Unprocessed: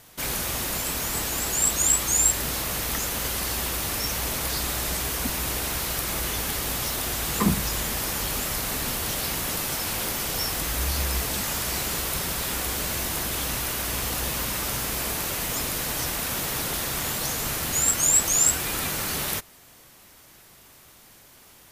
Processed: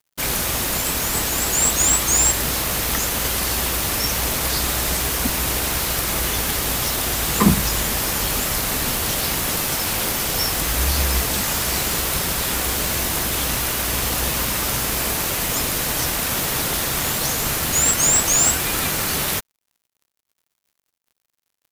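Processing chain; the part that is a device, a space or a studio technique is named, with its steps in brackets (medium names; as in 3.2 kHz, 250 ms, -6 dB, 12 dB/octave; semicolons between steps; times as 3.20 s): early transistor amplifier (crossover distortion -43 dBFS; slew-rate limiter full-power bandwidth 590 Hz); trim +7.5 dB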